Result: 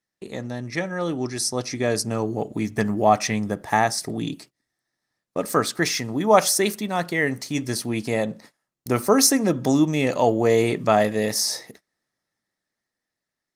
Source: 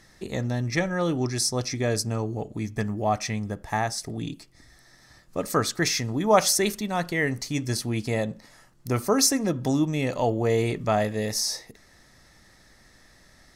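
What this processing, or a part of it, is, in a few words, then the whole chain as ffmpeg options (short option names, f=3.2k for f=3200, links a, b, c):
video call: -filter_complex "[0:a]asettb=1/sr,asplit=3[a][b][c];[a]atrim=end=9.574[d];[b]atrim=start=9.57:end=10.63,asetpts=PTS-STARTPTS,afade=t=in:d=0.004:c=qsin,afade=t=out:st=1.056:d=0.004:c=qsin,equalizer=f=6.6k:t=o:w=0.2:g=4.5[e];[c]atrim=start=10.626[f];[d][e]acrossfade=d=0.004:c1=hsin:c2=qsin[g];[g][f]acrossfade=d=0.004:c1=qsin:c2=hsin,highpass=160,dynaudnorm=f=430:g=9:m=12dB,agate=range=-27dB:threshold=-43dB:ratio=16:detection=peak,volume=-1dB" -ar 48000 -c:a libopus -b:a 32k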